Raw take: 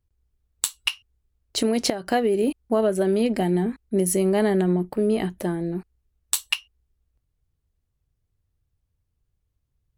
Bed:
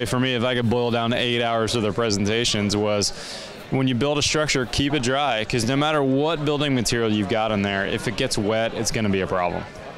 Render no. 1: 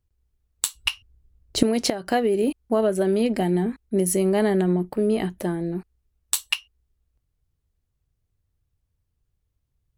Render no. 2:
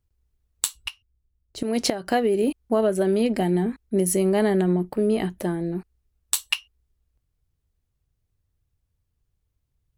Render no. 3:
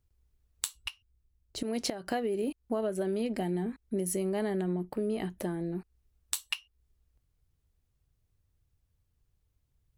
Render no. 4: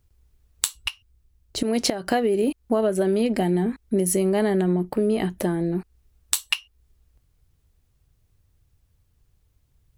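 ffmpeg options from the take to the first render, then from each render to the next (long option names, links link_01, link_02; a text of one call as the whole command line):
ffmpeg -i in.wav -filter_complex "[0:a]asettb=1/sr,asplit=3[link_01][link_02][link_03];[link_01]atrim=end=0.754[link_04];[link_02]atrim=start=0.75:end=1.63,asetpts=PTS-STARTPTS,afade=type=in:duration=0.004:curve=qsin,afade=type=out:start_time=0.876:duration=0.004:curve=qsin,lowshelf=frequency=420:gain=12[link_05];[link_03]atrim=start=1.626[link_06];[link_04][link_05]acrossfade=duration=0.004:curve1=hsin:curve2=qsin[link_07];[link_07][link_06]acrossfade=duration=0.004:curve1=qsin:curve2=hsin" out.wav
ffmpeg -i in.wav -filter_complex "[0:a]asplit=3[link_01][link_02][link_03];[link_01]atrim=end=0.91,asetpts=PTS-STARTPTS,afade=type=out:start_time=0.75:duration=0.16:silence=0.237137[link_04];[link_02]atrim=start=0.91:end=1.61,asetpts=PTS-STARTPTS,volume=-12.5dB[link_05];[link_03]atrim=start=1.61,asetpts=PTS-STARTPTS,afade=type=in:duration=0.16:silence=0.237137[link_06];[link_04][link_05][link_06]concat=n=3:v=0:a=1" out.wav
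ffmpeg -i in.wav -af "acompressor=threshold=-37dB:ratio=2" out.wav
ffmpeg -i in.wav -af "volume=10dB" out.wav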